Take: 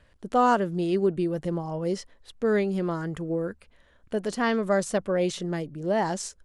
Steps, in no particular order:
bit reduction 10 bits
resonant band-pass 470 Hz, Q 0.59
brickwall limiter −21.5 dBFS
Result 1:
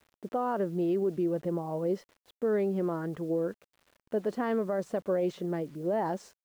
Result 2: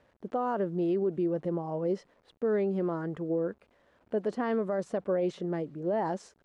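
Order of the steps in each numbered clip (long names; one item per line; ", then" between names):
resonant band-pass, then brickwall limiter, then bit reduction
bit reduction, then resonant band-pass, then brickwall limiter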